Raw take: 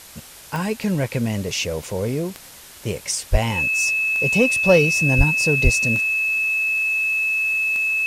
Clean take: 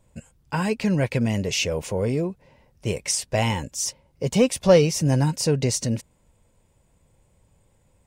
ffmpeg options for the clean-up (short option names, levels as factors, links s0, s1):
-filter_complex "[0:a]adeclick=t=4,bandreject=f=2600:w=30,asplit=3[s0][s1][s2];[s0]afade=t=out:st=3.31:d=0.02[s3];[s1]highpass=f=140:w=0.5412,highpass=f=140:w=1.3066,afade=t=in:st=3.31:d=0.02,afade=t=out:st=3.43:d=0.02[s4];[s2]afade=t=in:st=3.43:d=0.02[s5];[s3][s4][s5]amix=inputs=3:normalize=0,asplit=3[s6][s7][s8];[s6]afade=t=out:st=5.17:d=0.02[s9];[s7]highpass=f=140:w=0.5412,highpass=f=140:w=1.3066,afade=t=in:st=5.17:d=0.02,afade=t=out:st=5.29:d=0.02[s10];[s8]afade=t=in:st=5.29:d=0.02[s11];[s9][s10][s11]amix=inputs=3:normalize=0,asplit=3[s12][s13][s14];[s12]afade=t=out:st=5.63:d=0.02[s15];[s13]highpass=f=140:w=0.5412,highpass=f=140:w=1.3066,afade=t=in:st=5.63:d=0.02,afade=t=out:st=5.75:d=0.02[s16];[s14]afade=t=in:st=5.75:d=0.02[s17];[s15][s16][s17]amix=inputs=3:normalize=0,afwtdn=0.0089"